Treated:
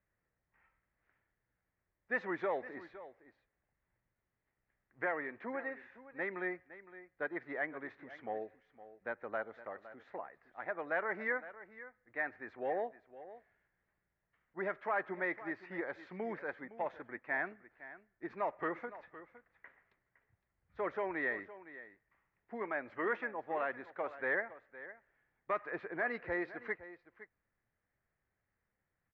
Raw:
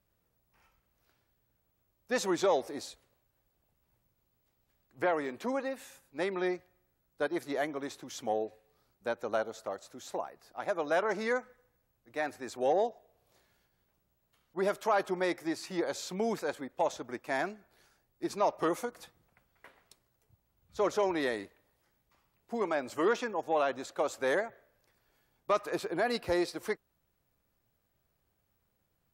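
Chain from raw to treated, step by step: four-pole ladder low-pass 2.1 kHz, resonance 65%; delay 512 ms -15.5 dB; trim +2 dB

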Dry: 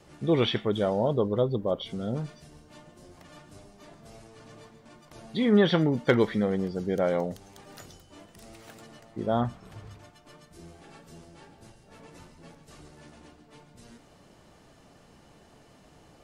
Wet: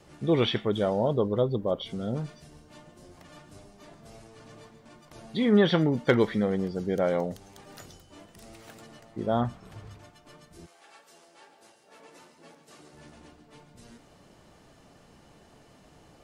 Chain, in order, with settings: 10.65–12.92 s: high-pass 820 Hz -> 210 Hz 12 dB/octave

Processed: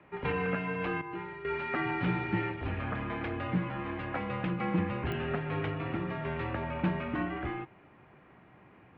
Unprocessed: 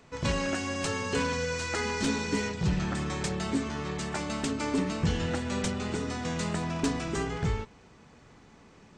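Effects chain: 1.01–1.45 s: feedback comb 220 Hz, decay 0.56 s, harmonics all, mix 80%; mistuned SSB -93 Hz 210–2800 Hz; clicks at 5.12 s, -26 dBFS

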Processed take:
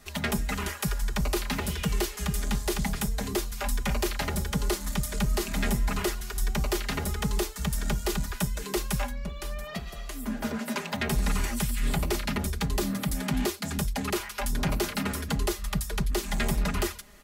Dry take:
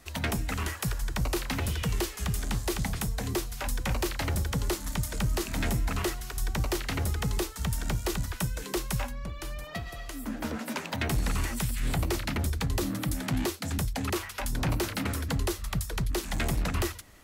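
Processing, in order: comb 4.9 ms, depth 73%

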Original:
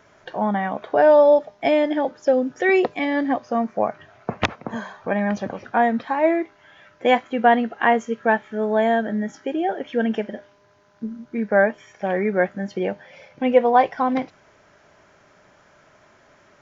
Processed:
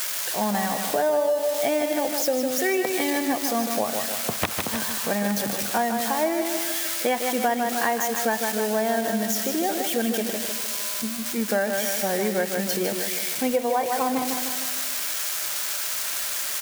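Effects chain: zero-crossing glitches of -15 dBFS; feedback delay 153 ms, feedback 53%, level -7 dB; compression 6:1, threshold -19 dBFS, peak gain reduction 10.5 dB; trim -1 dB

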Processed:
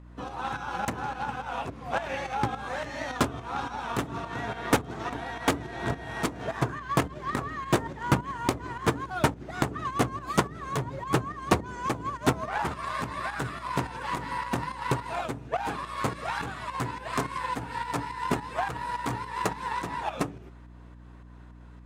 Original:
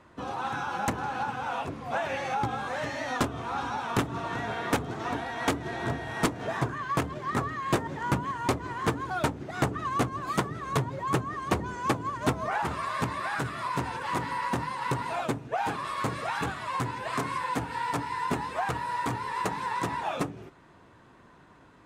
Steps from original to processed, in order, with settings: Chebyshev shaper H 3 -16 dB, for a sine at -17.5 dBFS; volume shaper 106 bpm, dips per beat 2, -9 dB, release 242 ms; hum 60 Hz, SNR 17 dB; trim +4.5 dB

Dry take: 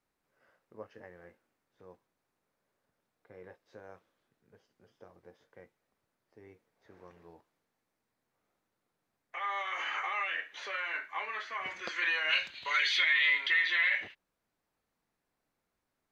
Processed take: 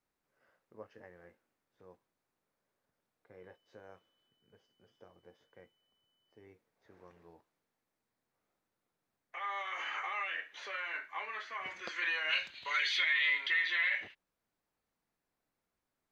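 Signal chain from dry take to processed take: 3.39–6.44 s: whistle 3 kHz -74 dBFS; trim -3.5 dB

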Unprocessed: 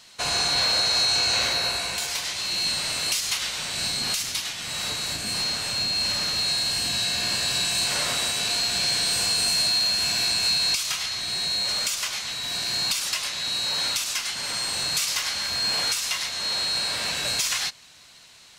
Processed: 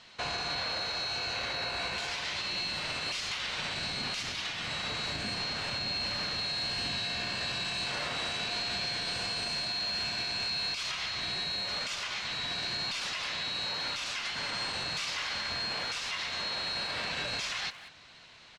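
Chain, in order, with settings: low-pass 3.4 kHz 12 dB/octave; peak limiter -25.5 dBFS, peak gain reduction 10 dB; speakerphone echo 190 ms, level -11 dB

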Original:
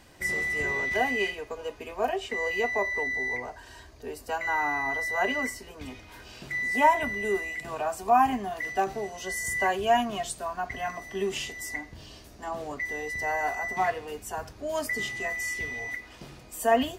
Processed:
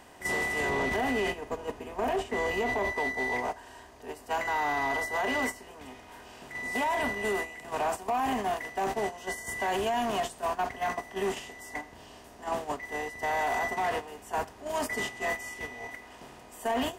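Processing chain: spectral levelling over time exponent 0.6; gate -26 dBFS, range -14 dB; 0.69–2.92 s: bass shelf 500 Hz +9 dB; peak limiter -18.5 dBFS, peak gain reduction 12 dB; saturation -22 dBFS, distortion -18 dB

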